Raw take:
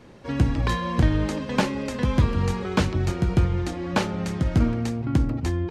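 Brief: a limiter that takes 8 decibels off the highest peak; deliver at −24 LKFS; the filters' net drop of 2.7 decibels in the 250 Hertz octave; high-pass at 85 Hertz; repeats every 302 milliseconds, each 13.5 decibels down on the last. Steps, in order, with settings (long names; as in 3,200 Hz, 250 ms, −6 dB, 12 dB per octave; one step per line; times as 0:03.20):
high-pass filter 85 Hz
parametric band 250 Hz −3.5 dB
brickwall limiter −16.5 dBFS
repeating echo 302 ms, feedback 21%, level −13.5 dB
level +4.5 dB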